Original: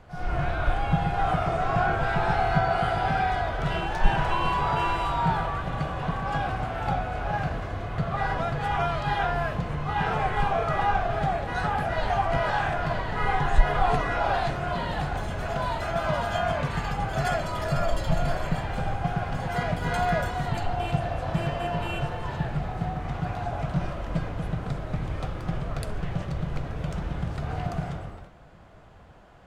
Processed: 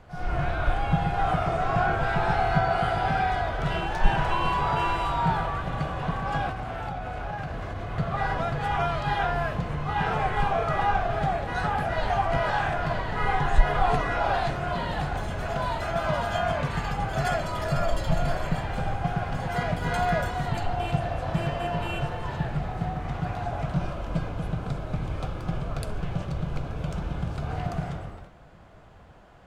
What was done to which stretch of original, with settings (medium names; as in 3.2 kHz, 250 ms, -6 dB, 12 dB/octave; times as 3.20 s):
6.49–7.91 s: compression 10:1, threshold -28 dBFS
23.75–27.52 s: band-stop 1.9 kHz, Q 7.3